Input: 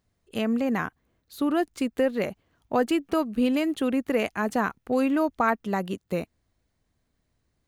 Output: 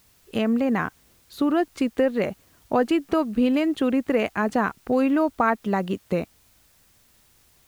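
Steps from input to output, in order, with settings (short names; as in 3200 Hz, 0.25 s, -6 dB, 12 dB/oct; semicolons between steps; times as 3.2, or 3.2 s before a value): LPF 3400 Hz 6 dB/oct; in parallel at +2.5 dB: compressor, threshold -32 dBFS, peak gain reduction 13.5 dB; on the sum: requantised 10-bit, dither triangular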